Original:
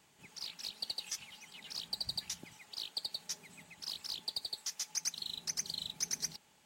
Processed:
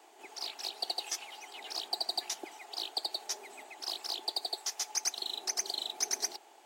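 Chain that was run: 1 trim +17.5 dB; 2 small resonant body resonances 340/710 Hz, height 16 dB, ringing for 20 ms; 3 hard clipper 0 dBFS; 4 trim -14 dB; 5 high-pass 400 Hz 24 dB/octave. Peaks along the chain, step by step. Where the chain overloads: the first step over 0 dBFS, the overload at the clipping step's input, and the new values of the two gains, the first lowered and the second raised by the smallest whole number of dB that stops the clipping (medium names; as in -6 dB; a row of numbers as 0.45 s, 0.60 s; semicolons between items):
-5.0 dBFS, -4.5 dBFS, -4.5 dBFS, -18.5 dBFS, -18.5 dBFS; nothing clips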